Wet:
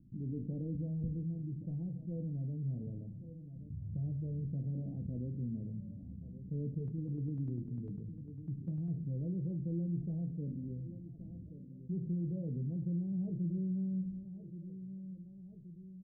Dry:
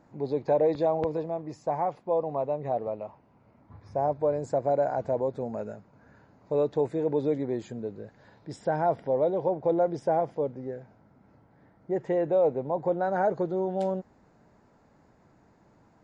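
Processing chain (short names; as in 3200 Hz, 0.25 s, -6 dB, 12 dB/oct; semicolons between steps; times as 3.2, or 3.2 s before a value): gate with hold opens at -49 dBFS; inverse Chebyshev low-pass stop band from 1200 Hz, stop band 80 dB; feedback echo 1.125 s, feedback 32%, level -22 dB; reverb RT60 0.35 s, pre-delay 6 ms, DRR 7 dB; 6.78–8.96 tremolo saw down 10 Hz, depth 50%; flange 0.18 Hz, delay 3 ms, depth 4.6 ms, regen -67%; fast leveller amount 50%; gain +3.5 dB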